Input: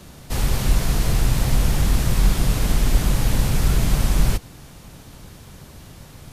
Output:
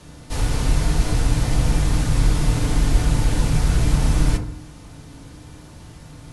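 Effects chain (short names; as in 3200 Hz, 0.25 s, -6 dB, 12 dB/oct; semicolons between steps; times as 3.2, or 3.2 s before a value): elliptic low-pass 11000 Hz, stop band 40 dB; FDN reverb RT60 0.58 s, low-frequency decay 1.4×, high-frequency decay 0.3×, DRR 1 dB; gain -2 dB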